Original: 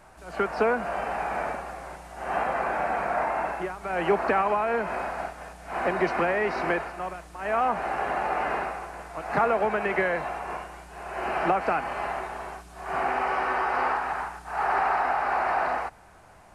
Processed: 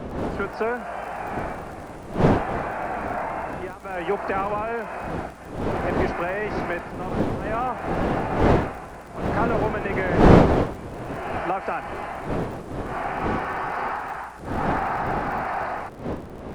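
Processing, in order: wind noise 490 Hz -24 dBFS; crackle 47 per s -34 dBFS; trim -2 dB

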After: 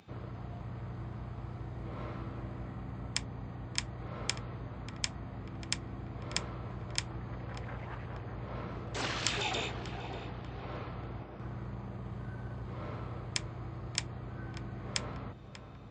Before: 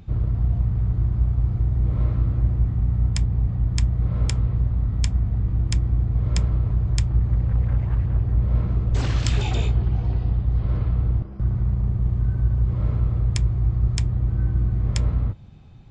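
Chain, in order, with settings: frequency weighting A; on a send: filtered feedback delay 590 ms, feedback 65%, low-pass 1.8 kHz, level -10 dB; on the sum: trim -1.5 dB

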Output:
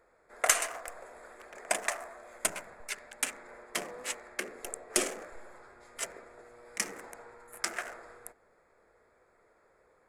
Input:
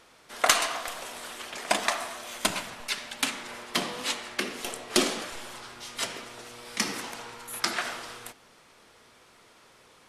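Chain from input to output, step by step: local Wiener filter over 15 samples; graphic EQ 125/250/500/1000/2000/4000/8000 Hz -10/-10/+3/-7/+3/-12/+7 dB; trim -2.5 dB

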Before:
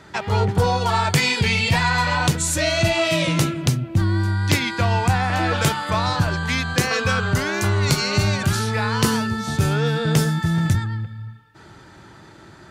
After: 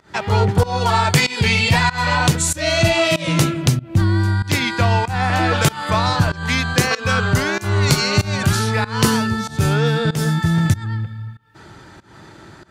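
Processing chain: volume shaper 95 bpm, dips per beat 1, -21 dB, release 243 ms; trim +3.5 dB

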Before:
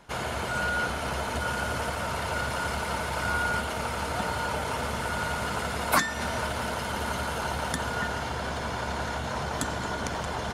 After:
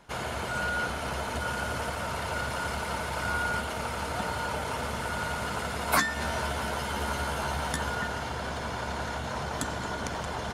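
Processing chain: 5.86–7.95 s: doubling 14 ms -5 dB; trim -2 dB

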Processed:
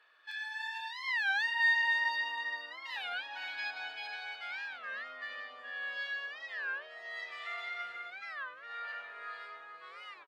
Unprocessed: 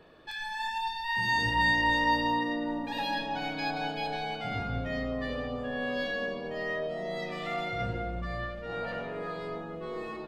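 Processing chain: resonant high-pass 1.5 kHz, resonance Q 1.6; treble shelf 7.8 kHz -7.5 dB; pre-echo 39 ms -22.5 dB; Chebyshev shaper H 2 -40 dB, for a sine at -15.5 dBFS; on a send: delay 449 ms -9.5 dB; on the sum: warped record 33 1/3 rpm, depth 250 cents; trim -5.5 dB

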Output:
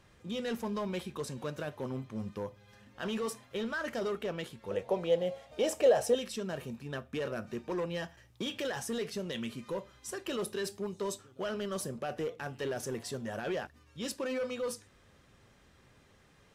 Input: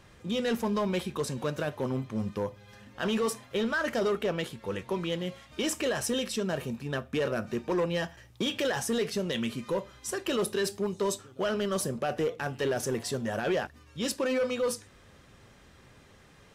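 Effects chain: 4.71–6.15 s: high-order bell 600 Hz +14 dB 1.1 oct; trim -6.5 dB

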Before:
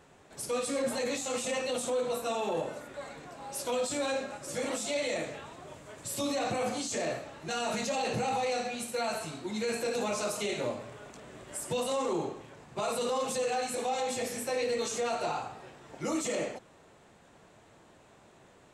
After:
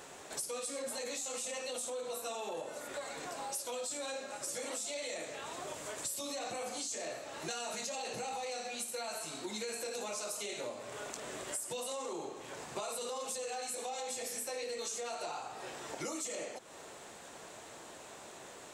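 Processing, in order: tone controls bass -11 dB, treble +8 dB; compression 6:1, threshold -47 dBFS, peak gain reduction 18.5 dB; trim +8 dB

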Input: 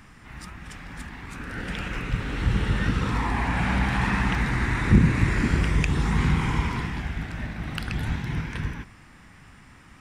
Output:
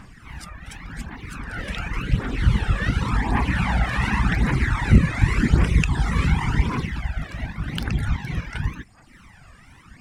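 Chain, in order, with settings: wow and flutter 110 cents; phaser 0.89 Hz, delay 1.8 ms, feedback 42%; reverb removal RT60 0.84 s; trim +2.5 dB

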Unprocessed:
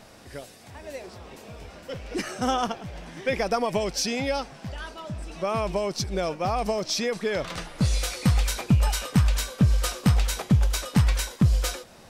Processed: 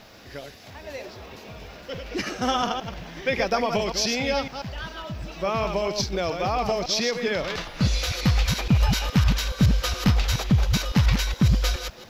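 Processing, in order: chunks repeated in reverse 140 ms, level -6 dB; treble shelf 2.6 kHz +10 dB; added noise blue -53 dBFS; boxcar filter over 5 samples

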